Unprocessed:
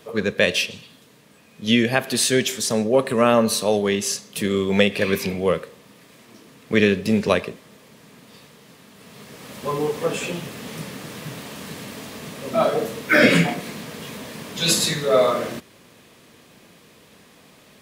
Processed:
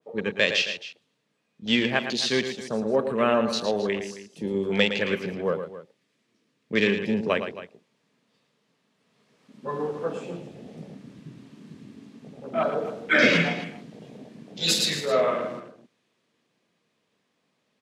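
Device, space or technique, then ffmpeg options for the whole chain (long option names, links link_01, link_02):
over-cleaned archive recording: -filter_complex "[0:a]highpass=130,lowpass=7000,afwtdn=0.0398,asettb=1/sr,asplit=3[link_01][link_02][link_03];[link_01]atrim=end=5.554[link_04];[link_02]atrim=start=5.55:end=6.75,asetpts=PTS-STARTPTS,afade=type=in:duration=0.004:curve=qsin,afade=type=out:start_time=1.196:duration=0.004:curve=qsin,equalizer=frequency=840:width_type=o:width=1.3:gain=-5.5[link_05];[link_03]atrim=start=6.746[link_06];[link_04][link_05]acrossfade=duration=0.004:curve1=hsin:curve2=qsin[link_07];[link_07][link_06]acrossfade=duration=0.004:curve1=qsin:curve2=hsin,aecho=1:1:112|268:0.355|0.178,adynamicequalizer=threshold=0.0224:dfrequency=1600:dqfactor=0.7:tfrequency=1600:tqfactor=0.7:attack=5:release=100:ratio=0.375:range=2.5:mode=boostabove:tftype=highshelf,volume=-6dB"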